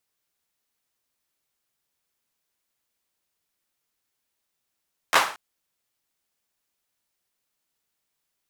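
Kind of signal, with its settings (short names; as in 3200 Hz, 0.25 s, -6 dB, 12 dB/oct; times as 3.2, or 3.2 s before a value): hand clap length 0.23 s, bursts 3, apart 12 ms, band 1100 Hz, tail 0.41 s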